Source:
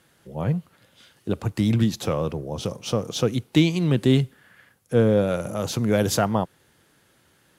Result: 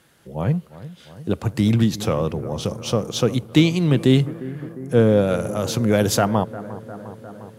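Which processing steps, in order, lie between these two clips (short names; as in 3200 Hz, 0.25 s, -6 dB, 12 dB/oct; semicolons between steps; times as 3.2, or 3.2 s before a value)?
analogue delay 0.353 s, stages 4096, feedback 72%, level -16 dB; gain +3 dB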